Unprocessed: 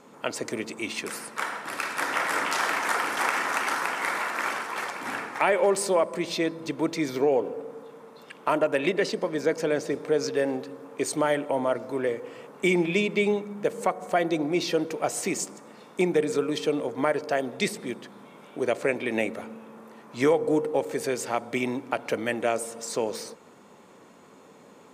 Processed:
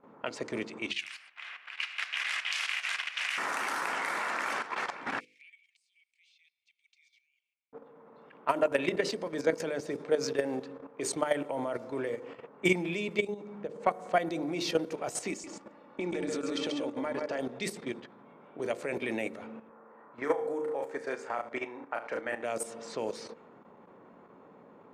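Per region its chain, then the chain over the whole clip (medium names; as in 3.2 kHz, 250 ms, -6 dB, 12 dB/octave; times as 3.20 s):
0.91–3.38 s: resonant high-pass 2.6 kHz, resonance Q 2.9 + ring modulator 230 Hz
5.20–7.73 s: Chebyshev high-pass 2.2 kHz, order 6 + differentiator + compression 12:1, threshold -42 dBFS
13.21–13.80 s: dynamic bell 2.1 kHz, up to -7 dB, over -44 dBFS, Q 0.74 + compression 2.5:1, threshold -33 dBFS
15.30–17.39 s: comb 3.5 ms, depth 40% + compression, threshold -27 dBFS + delay 137 ms -4.5 dB
19.69–22.44 s: high-pass 600 Hz 6 dB/octave + resonant high shelf 2.2 kHz -7.5 dB, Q 1.5 + flutter echo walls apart 6 m, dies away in 0.32 s
whole clip: level-controlled noise filter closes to 1.3 kHz, open at -23 dBFS; hum notches 50/100/150/200/250/300/350/400/450/500 Hz; level held to a coarse grid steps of 11 dB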